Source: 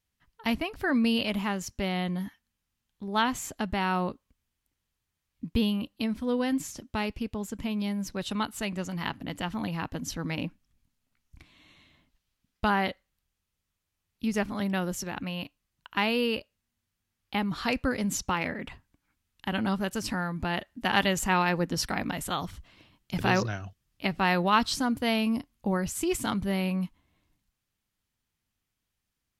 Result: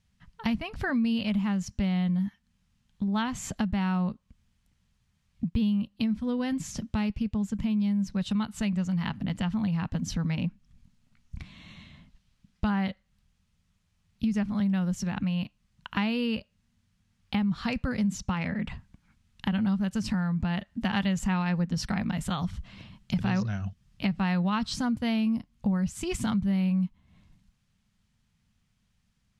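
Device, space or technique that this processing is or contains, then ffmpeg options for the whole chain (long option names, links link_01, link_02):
jukebox: -af "lowpass=7800,lowshelf=frequency=250:width_type=q:width=3:gain=6.5,acompressor=threshold=-37dB:ratio=3,volume=7dB"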